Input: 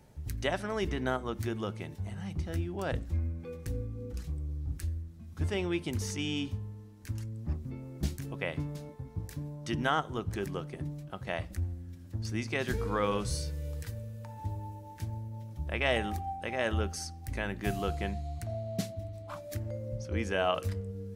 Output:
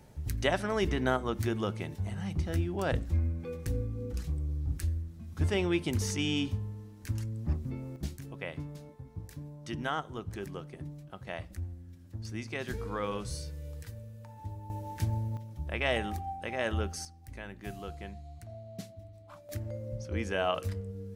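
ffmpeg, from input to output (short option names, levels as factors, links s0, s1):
-af "asetnsamples=n=441:p=0,asendcmd='7.96 volume volume -4.5dB;14.7 volume volume 6.5dB;15.37 volume volume -1dB;17.05 volume volume -9dB;19.49 volume volume -1dB',volume=1.41"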